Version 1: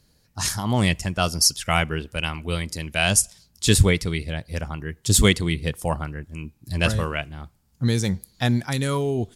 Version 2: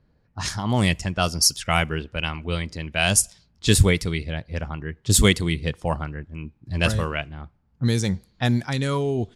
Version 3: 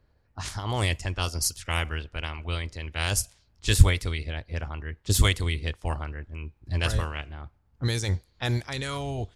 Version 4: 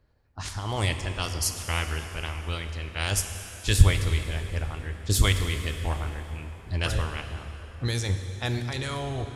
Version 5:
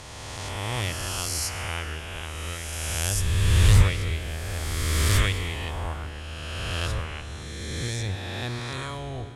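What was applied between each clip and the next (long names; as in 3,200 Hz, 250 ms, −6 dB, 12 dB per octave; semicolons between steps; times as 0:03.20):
low-pass that shuts in the quiet parts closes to 1,600 Hz, open at −16 dBFS
ceiling on every frequency bin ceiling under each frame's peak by 16 dB; low shelf with overshoot 130 Hz +11.5 dB, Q 1.5; level −8.5 dB
dense smooth reverb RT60 3.7 s, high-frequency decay 0.8×, DRR 6.5 dB; level −1 dB
peak hold with a rise ahead of every peak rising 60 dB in 2.72 s; highs frequency-modulated by the lows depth 0.33 ms; level −5.5 dB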